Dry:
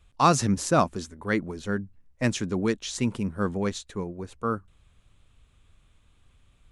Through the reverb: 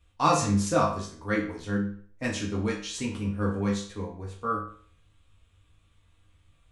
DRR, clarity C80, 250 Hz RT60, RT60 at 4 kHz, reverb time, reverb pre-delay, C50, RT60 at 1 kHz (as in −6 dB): −4.0 dB, 10.5 dB, 0.45 s, 0.45 s, 0.50 s, 4 ms, 6.5 dB, 0.50 s